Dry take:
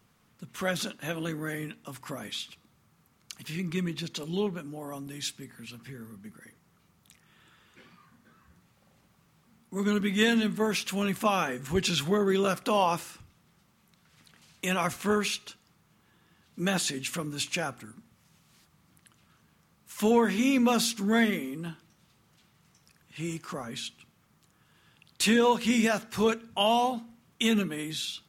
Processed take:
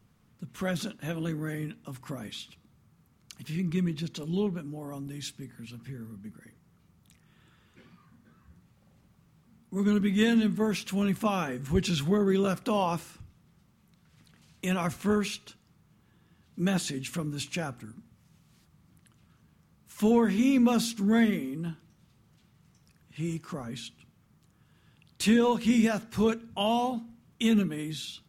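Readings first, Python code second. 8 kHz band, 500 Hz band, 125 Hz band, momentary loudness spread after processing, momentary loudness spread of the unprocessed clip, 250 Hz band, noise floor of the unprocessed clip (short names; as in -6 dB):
-5.0 dB, -1.5 dB, +3.5 dB, 18 LU, 18 LU, +2.5 dB, -66 dBFS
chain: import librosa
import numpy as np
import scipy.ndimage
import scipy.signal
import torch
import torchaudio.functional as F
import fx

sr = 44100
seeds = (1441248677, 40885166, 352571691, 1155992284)

y = fx.low_shelf(x, sr, hz=300.0, db=11.5)
y = F.gain(torch.from_numpy(y), -5.0).numpy()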